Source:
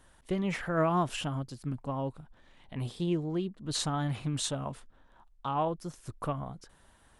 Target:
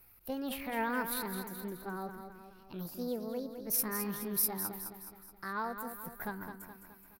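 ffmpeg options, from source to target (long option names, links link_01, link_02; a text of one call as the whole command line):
ffmpeg -i in.wav -af "aexciter=amount=11:drive=2.5:freq=7200,asetrate=62367,aresample=44100,atempo=0.707107,aecho=1:1:211|422|633|844|1055|1266:0.398|0.203|0.104|0.0528|0.0269|0.0137,volume=-7dB" out.wav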